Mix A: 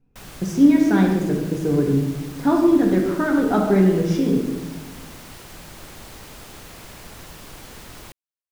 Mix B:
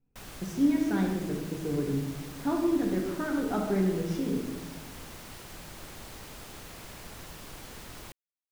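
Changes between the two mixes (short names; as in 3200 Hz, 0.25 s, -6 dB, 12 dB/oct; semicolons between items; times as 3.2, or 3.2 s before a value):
speech -11.0 dB; background -4.5 dB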